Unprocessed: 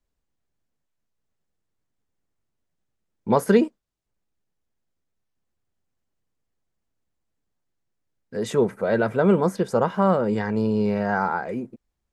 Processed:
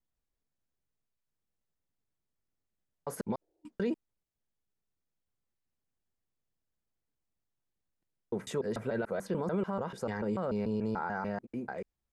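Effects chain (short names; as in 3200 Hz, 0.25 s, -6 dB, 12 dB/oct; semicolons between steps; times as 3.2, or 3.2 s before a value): slices in reverse order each 0.146 s, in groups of 3; spectral repair 3.44–3.68, 320–930 Hz after; limiter -16 dBFS, peak gain reduction 10.5 dB; gain -8 dB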